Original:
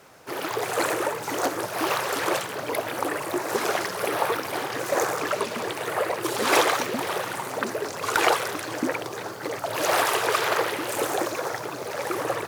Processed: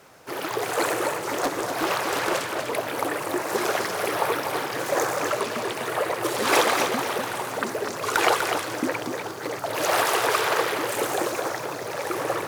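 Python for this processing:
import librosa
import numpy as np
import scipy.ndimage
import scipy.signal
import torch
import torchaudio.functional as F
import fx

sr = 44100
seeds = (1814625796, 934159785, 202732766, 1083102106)

p1 = x + fx.echo_single(x, sr, ms=246, db=-6.5, dry=0)
y = fx.doppler_dist(p1, sr, depth_ms=0.28, at=(1.17, 2.76))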